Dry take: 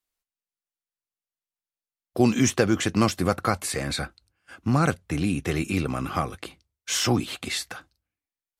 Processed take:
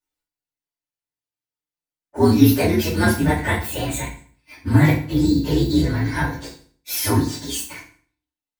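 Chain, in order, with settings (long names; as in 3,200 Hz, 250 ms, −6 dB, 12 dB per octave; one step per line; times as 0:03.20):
partials spread apart or drawn together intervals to 122%
feedback delay network reverb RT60 0.47 s, low-frequency decay 1.2×, high-frequency decay 0.9×, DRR −4.5 dB
level +1.5 dB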